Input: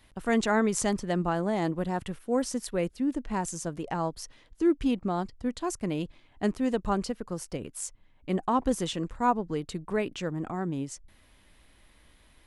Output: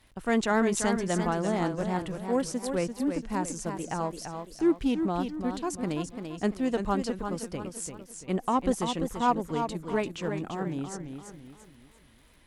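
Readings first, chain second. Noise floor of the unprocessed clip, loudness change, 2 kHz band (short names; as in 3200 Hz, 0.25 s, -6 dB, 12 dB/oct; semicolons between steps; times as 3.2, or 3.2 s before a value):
-60 dBFS, +0.5 dB, +0.5 dB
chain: crackle 79/s -49 dBFS; added harmonics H 7 -33 dB, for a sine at -11.5 dBFS; warbling echo 0.34 s, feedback 40%, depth 96 cents, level -7 dB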